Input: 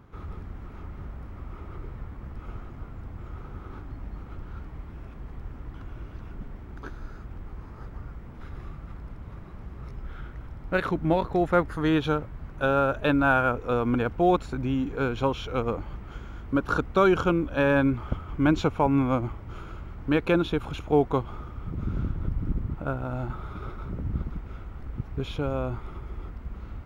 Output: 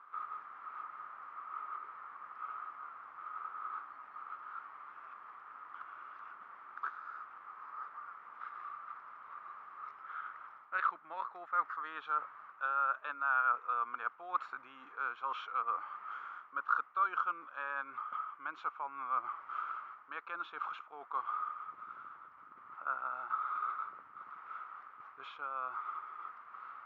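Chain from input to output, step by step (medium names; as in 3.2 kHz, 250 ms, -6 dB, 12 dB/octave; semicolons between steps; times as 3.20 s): reverse; compression 8:1, threshold -31 dBFS, peak gain reduction 15.5 dB; reverse; ladder band-pass 1.3 kHz, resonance 75%; trim +9.5 dB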